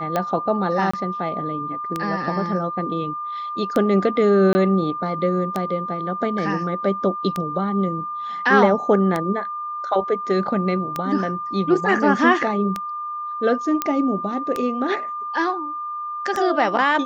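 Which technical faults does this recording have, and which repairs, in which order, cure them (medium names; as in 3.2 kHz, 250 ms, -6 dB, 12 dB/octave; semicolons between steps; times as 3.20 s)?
tick 33 1/3 rpm -9 dBFS
whine 1.2 kHz -26 dBFS
0.91–0.94 s: dropout 25 ms
4.53–4.55 s: dropout 20 ms
13.82 s: pop -6 dBFS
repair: de-click; band-stop 1.2 kHz, Q 30; interpolate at 0.91 s, 25 ms; interpolate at 4.53 s, 20 ms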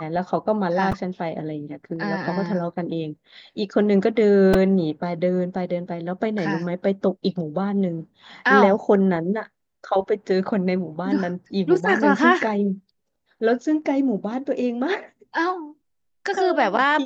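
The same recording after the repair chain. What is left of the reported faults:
nothing left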